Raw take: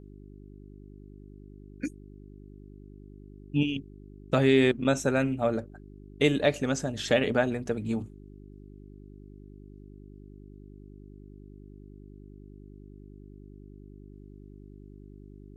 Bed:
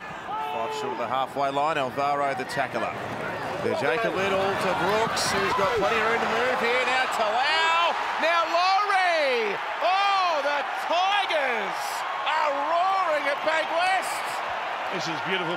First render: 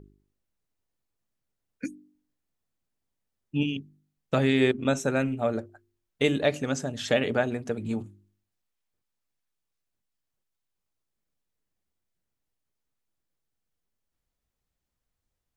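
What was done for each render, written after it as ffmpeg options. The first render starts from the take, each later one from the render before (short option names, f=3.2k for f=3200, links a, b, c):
-af "bandreject=f=50:t=h:w=4,bandreject=f=100:t=h:w=4,bandreject=f=150:t=h:w=4,bandreject=f=200:t=h:w=4,bandreject=f=250:t=h:w=4,bandreject=f=300:t=h:w=4,bandreject=f=350:t=h:w=4,bandreject=f=400:t=h:w=4"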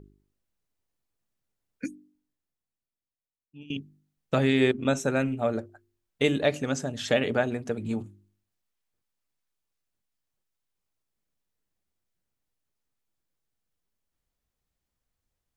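-filter_complex "[0:a]asplit=2[a][b];[a]atrim=end=3.7,asetpts=PTS-STARTPTS,afade=t=out:st=1.88:d=1.82:c=qua:silence=0.0944061[c];[b]atrim=start=3.7,asetpts=PTS-STARTPTS,afade=t=in:d=0.004:c=hsin:silence=0.0944061[d];[c][d]concat=n=2:v=0:a=1"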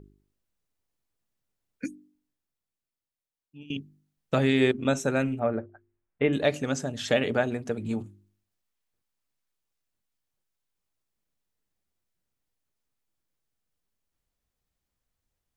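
-filter_complex "[0:a]asettb=1/sr,asplit=3[a][b][c];[a]atrim=end=5.394[d];[b]atrim=start=5.39:end=6.33,asetpts=PTS-STARTPTS,afade=t=in:d=0.004:c=qsin,afade=t=out:st=0.936:d=0.004:c=qsin,lowpass=f=2.3k:w=0.5412,lowpass=f=2.3k:w=1.3066[e];[c]atrim=start=6.326[f];[d][e]acrossfade=d=0.004:c1=hsin:c2=qsin[g];[g][f]acrossfade=d=0.004:c1=qsin:c2=hsin"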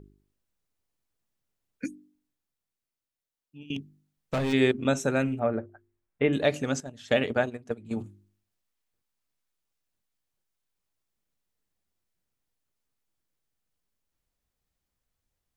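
-filter_complex "[0:a]asplit=3[a][b][c];[a]afade=t=out:st=3.74:d=0.02[d];[b]volume=24dB,asoftclip=hard,volume=-24dB,afade=t=in:st=3.74:d=0.02,afade=t=out:st=4.52:d=0.02[e];[c]afade=t=in:st=4.52:d=0.02[f];[d][e][f]amix=inputs=3:normalize=0,asettb=1/sr,asplit=3[g][h][i];[g]atrim=end=6.804[j];[h]atrim=start=6.8:end=7.97,asetpts=PTS-STARTPTS,afade=t=in:d=0.004:c=qsin,afade=t=out:st=1.166:d=0.004:c=qsin,agate=range=-13dB:threshold=-29dB:ratio=16:release=100:detection=peak[k];[i]atrim=start=7.966[l];[j][k]acrossfade=d=0.004:c1=hsin:c2=qsin[m];[m][l]acrossfade=d=0.004:c1=qsin:c2=hsin"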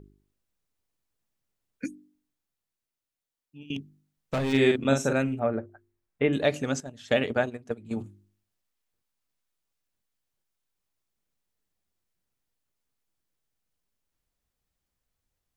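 -filter_complex "[0:a]asettb=1/sr,asplit=3[a][b][c];[a]atrim=end=4.504[d];[b]atrim=start=4.5:end=5.13,asetpts=PTS-STARTPTS,afade=t=in:d=0.004:c=qsin,afade=t=out:st=0.626:d=0.004:c=qsin,asplit=2[e][f];[f]adelay=44,volume=-4dB[g];[e][g]amix=inputs=2:normalize=0,atrim=end_sample=27783[h];[c]atrim=start=5.126[i];[d][h]acrossfade=d=0.004:c1=hsin:c2=qsin[j];[j][i]acrossfade=d=0.004:c1=qsin:c2=hsin"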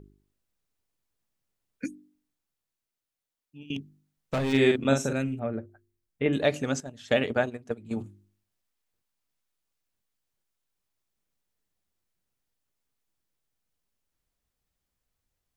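-filter_complex "[0:a]asettb=1/sr,asplit=3[a][b][c];[a]atrim=end=5.064[d];[b]atrim=start=5.06:end=6.26,asetpts=PTS-STARTPTS,afade=t=in:d=0.004:c=qsin,afade=t=out:st=1.196:d=0.004:c=qsin,equalizer=f=930:w=0.54:g=-8[e];[c]atrim=start=6.256[f];[d][e]acrossfade=d=0.004:c1=hsin:c2=qsin[g];[g][f]acrossfade=d=0.004:c1=qsin:c2=hsin"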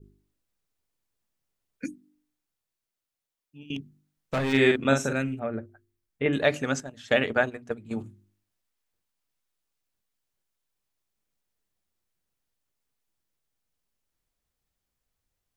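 -af "bandreject=f=60:t=h:w=6,bandreject=f=120:t=h:w=6,bandreject=f=180:t=h:w=6,bandreject=f=240:t=h:w=6,bandreject=f=300:t=h:w=6,adynamicequalizer=threshold=0.00891:dfrequency=1600:dqfactor=1:tfrequency=1600:tqfactor=1:attack=5:release=100:ratio=0.375:range=3:mode=boostabove:tftype=bell"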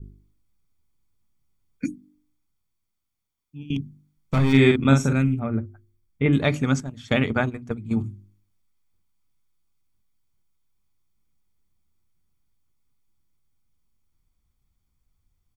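-af "lowshelf=f=270:g=12,aecho=1:1:0.9:0.46"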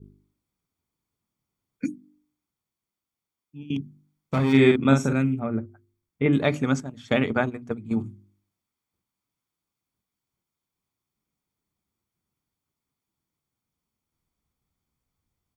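-af "highpass=f=300:p=1,tiltshelf=f=1.1k:g=3.5"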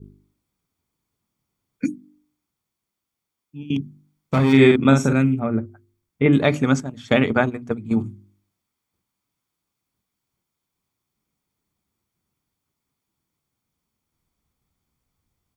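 -af "volume=5dB,alimiter=limit=-3dB:level=0:latency=1"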